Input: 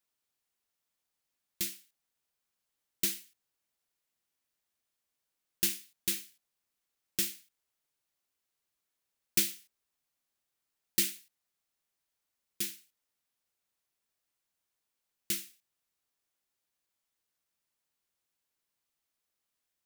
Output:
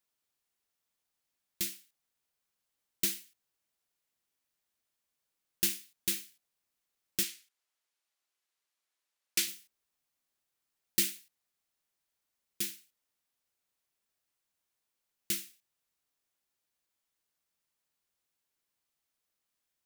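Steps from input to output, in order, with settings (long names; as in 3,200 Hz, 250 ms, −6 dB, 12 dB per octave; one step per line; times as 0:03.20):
0:07.23–0:09.48: meter weighting curve A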